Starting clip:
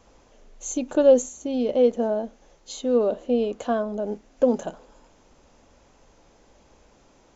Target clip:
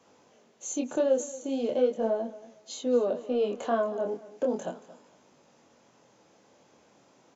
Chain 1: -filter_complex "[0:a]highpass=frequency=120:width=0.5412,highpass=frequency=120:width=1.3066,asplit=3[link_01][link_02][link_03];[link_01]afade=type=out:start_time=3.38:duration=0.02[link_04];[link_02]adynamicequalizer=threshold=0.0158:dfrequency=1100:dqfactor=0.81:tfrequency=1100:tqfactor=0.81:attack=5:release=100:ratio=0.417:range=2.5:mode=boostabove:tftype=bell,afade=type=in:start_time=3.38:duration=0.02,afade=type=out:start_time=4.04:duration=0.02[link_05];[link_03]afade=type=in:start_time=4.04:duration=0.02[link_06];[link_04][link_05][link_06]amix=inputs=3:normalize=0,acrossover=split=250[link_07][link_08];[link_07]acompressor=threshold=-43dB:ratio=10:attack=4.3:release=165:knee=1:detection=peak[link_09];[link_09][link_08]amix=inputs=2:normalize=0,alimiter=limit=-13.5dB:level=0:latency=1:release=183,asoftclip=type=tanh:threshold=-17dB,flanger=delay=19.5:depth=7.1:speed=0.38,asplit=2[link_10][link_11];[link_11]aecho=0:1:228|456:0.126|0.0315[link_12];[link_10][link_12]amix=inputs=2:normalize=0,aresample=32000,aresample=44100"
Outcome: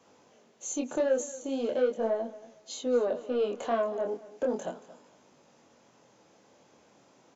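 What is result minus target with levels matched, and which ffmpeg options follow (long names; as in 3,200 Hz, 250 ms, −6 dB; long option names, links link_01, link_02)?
soft clipping: distortion +12 dB; downward compressor: peak gain reduction +7 dB
-filter_complex "[0:a]highpass=frequency=120:width=0.5412,highpass=frequency=120:width=1.3066,asplit=3[link_01][link_02][link_03];[link_01]afade=type=out:start_time=3.38:duration=0.02[link_04];[link_02]adynamicequalizer=threshold=0.0158:dfrequency=1100:dqfactor=0.81:tfrequency=1100:tqfactor=0.81:attack=5:release=100:ratio=0.417:range=2.5:mode=boostabove:tftype=bell,afade=type=in:start_time=3.38:duration=0.02,afade=type=out:start_time=4.04:duration=0.02[link_05];[link_03]afade=type=in:start_time=4.04:duration=0.02[link_06];[link_04][link_05][link_06]amix=inputs=3:normalize=0,acrossover=split=250[link_07][link_08];[link_07]acompressor=threshold=-35.5dB:ratio=10:attack=4.3:release=165:knee=1:detection=peak[link_09];[link_09][link_08]amix=inputs=2:normalize=0,alimiter=limit=-13.5dB:level=0:latency=1:release=183,asoftclip=type=tanh:threshold=-9.5dB,flanger=delay=19.5:depth=7.1:speed=0.38,asplit=2[link_10][link_11];[link_11]aecho=0:1:228|456:0.126|0.0315[link_12];[link_10][link_12]amix=inputs=2:normalize=0,aresample=32000,aresample=44100"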